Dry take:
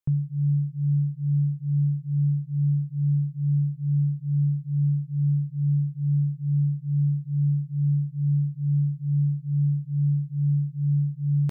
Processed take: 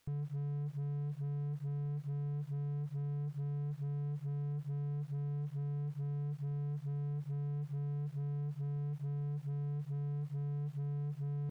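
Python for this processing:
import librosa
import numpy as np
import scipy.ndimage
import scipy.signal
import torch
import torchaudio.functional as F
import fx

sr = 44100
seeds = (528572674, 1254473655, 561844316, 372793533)

p1 = fx.low_shelf(x, sr, hz=130.0, db=-11.5)
p2 = fx.quant_dither(p1, sr, seeds[0], bits=8, dither='triangular')
p3 = p1 + F.gain(torch.from_numpy(p2), -7.0).numpy()
p4 = fx.slew_limit(p3, sr, full_power_hz=4.1)
y = F.gain(torch.from_numpy(p4), -5.5).numpy()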